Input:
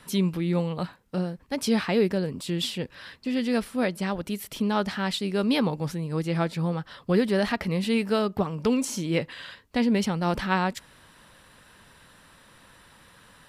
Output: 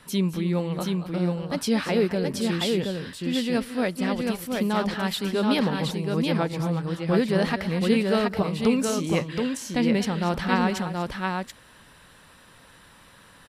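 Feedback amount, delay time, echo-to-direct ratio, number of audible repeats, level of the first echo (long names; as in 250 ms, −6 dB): repeats not evenly spaced, 205 ms, −3.0 dB, 3, −18.5 dB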